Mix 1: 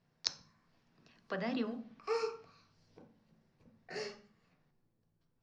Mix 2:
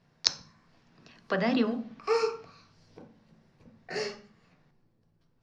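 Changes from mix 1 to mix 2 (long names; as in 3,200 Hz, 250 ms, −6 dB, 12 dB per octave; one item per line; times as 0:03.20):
speech +10.0 dB
background +8.5 dB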